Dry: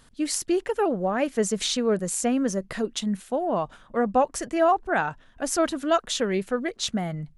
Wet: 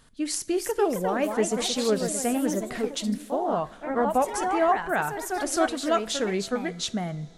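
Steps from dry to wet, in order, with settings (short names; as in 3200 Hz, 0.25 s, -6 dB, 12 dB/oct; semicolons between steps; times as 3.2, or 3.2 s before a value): echoes that change speed 0.342 s, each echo +2 st, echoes 3, each echo -6 dB; two-slope reverb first 0.33 s, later 4.1 s, from -18 dB, DRR 14 dB; gain -2 dB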